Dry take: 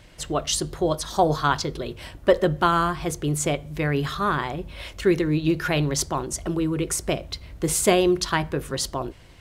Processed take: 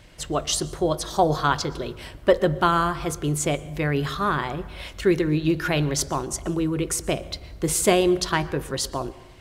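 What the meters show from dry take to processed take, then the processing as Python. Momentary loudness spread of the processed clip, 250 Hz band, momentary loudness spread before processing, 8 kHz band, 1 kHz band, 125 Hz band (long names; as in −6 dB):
9 LU, 0.0 dB, 9 LU, 0.0 dB, 0.0 dB, 0.0 dB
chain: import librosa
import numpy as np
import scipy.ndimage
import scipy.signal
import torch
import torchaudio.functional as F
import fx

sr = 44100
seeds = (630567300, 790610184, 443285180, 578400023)

y = fx.rev_plate(x, sr, seeds[0], rt60_s=1.1, hf_ratio=0.5, predelay_ms=105, drr_db=18.0)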